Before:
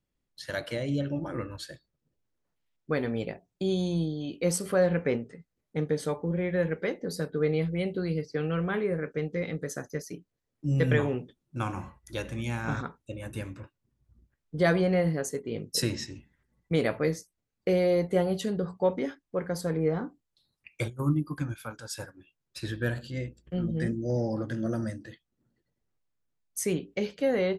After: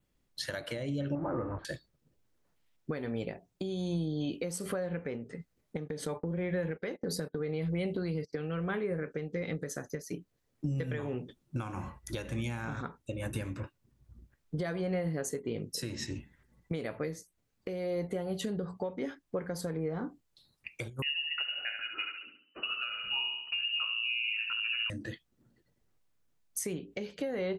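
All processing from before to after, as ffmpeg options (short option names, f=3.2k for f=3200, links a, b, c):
-filter_complex "[0:a]asettb=1/sr,asplit=3[a][b][c];[a]atrim=end=1.154[d];[b]atrim=start=1.15:end=1.65,asetpts=PTS-STARTPTS,afade=t=in:d=0.004:c=qsin,afade=t=out:st=0.496:d=0.004:c=qsin,aeval=exprs='val(0)+0.5*0.015*sgn(val(0))':c=same,lowpass=f=1.2k:w=0.5412,lowpass=f=1.2k:w=1.3066,lowshelf=f=380:g=-7[e];[c]atrim=start=1.646[f];[d][e]acrossfade=d=0.004:c1=hsin:c2=qsin[g];[g][f]acrossfade=d=0.004:c1=qsin:c2=hsin,asettb=1/sr,asplit=3[h][i][j];[h]atrim=end=5.774[k];[i]atrim=start=5.77:end=8.33,asetpts=PTS-STARTPTS,afade=t=in:d=0.004:c=qsin,afade=t=out:st=2.556:d=0.004:c=qsin,acompressor=threshold=-35dB:ratio=2.5:attack=3.2:release=140:knee=1:detection=peak,agate=range=-25dB:threshold=-44dB:ratio=16:release=100:detection=peak[l];[j]atrim=start=8.326[m];[k][l]acrossfade=d=0.004:c1=hsin:c2=qsin[n];[n][m]acrossfade=d=0.004:c1=qsin:c2=hsin,asettb=1/sr,asplit=3[o][p][q];[o]atrim=end=21.024[r];[p]atrim=start=21.02:end=24.9,asetpts=PTS-STARTPTS,afade=t=in:d=0.004:c=qsin,afade=t=out:st=3.876:d=0.004:c=qsin,lowpass=f=2.6k:t=q:w=0.5098,lowpass=f=2.6k:t=q:w=0.6013,lowpass=f=2.6k:t=q:w=0.9,lowpass=f=2.6k:t=q:w=2.563,afreqshift=-3000,aecho=1:1:70|140|210|280|350:0.473|0.194|0.0795|0.0326|0.0134,atrim=end_sample=171108[s];[q]atrim=start=24.896[t];[r][s]acrossfade=d=0.004:c1=hsin:c2=qsin[u];[u][t]acrossfade=d=0.004:c1=qsin:c2=hsin,adynamicequalizer=threshold=0.001:dfrequency=5200:dqfactor=3.9:tfrequency=5200:tqfactor=3.9:attack=5:release=100:ratio=0.375:range=4:mode=cutabove:tftype=bell,acompressor=threshold=-34dB:ratio=12,alimiter=level_in=6.5dB:limit=-24dB:level=0:latency=1:release=422,volume=-6.5dB,volume=6.5dB"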